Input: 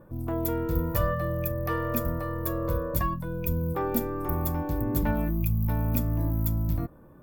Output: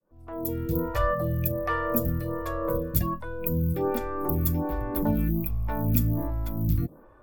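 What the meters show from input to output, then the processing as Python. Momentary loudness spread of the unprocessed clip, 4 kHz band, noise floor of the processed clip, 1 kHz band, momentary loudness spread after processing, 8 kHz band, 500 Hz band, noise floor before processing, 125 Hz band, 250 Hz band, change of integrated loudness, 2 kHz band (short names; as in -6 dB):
4 LU, +1.0 dB, -52 dBFS, +1.0 dB, 6 LU, +1.0 dB, +1.5 dB, -52 dBFS, 0.0 dB, +1.0 dB, +1.0 dB, +1.5 dB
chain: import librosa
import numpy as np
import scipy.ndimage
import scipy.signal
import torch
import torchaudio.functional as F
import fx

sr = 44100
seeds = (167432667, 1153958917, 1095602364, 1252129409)

y = fx.fade_in_head(x, sr, length_s=0.82)
y = fx.stagger_phaser(y, sr, hz=1.3)
y = F.gain(torch.from_numpy(y), 4.5).numpy()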